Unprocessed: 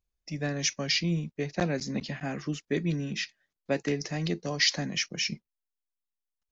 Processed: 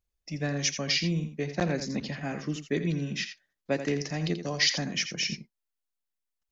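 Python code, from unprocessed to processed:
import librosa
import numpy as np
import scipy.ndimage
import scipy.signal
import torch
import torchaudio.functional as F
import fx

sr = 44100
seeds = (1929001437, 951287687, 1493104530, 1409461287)

y = x + 10.0 ** (-10.0 / 20.0) * np.pad(x, (int(84 * sr / 1000.0), 0))[:len(x)]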